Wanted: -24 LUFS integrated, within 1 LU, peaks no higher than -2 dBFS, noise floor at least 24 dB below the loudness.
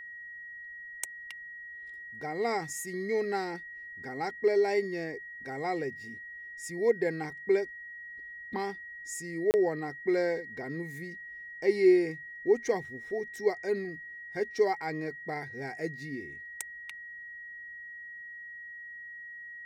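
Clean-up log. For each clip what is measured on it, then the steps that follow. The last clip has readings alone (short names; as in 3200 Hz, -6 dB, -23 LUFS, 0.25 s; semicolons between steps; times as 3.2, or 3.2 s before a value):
dropouts 1; longest dropout 29 ms; steady tone 1900 Hz; tone level -42 dBFS; loudness -33.0 LUFS; peak -13.0 dBFS; loudness target -24.0 LUFS
-> interpolate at 9.51, 29 ms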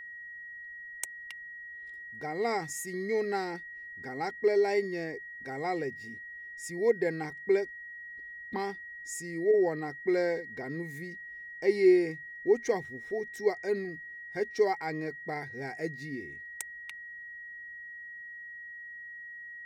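dropouts 0; steady tone 1900 Hz; tone level -42 dBFS
-> notch 1900 Hz, Q 30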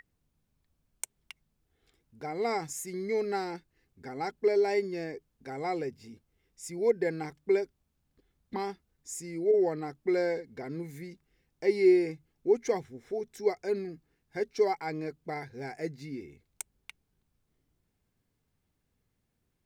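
steady tone none; loudness -31.5 LUFS; peak -13.5 dBFS; loudness target -24.0 LUFS
-> gain +7.5 dB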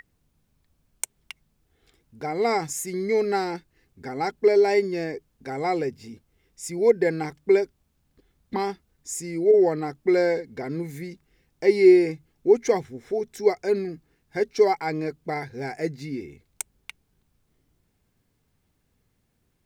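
loudness -24.0 LUFS; peak -6.0 dBFS; noise floor -71 dBFS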